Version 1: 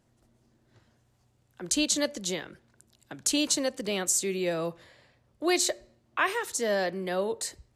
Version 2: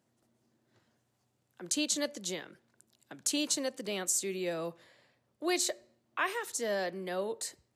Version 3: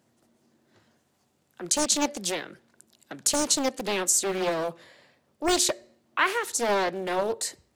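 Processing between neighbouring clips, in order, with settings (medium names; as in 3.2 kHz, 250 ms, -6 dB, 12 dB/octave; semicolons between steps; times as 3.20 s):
high-pass 150 Hz 12 dB/octave; treble shelf 11 kHz +4 dB; trim -5.5 dB
hum notches 60/120 Hz; loudspeaker Doppler distortion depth 0.86 ms; trim +8.5 dB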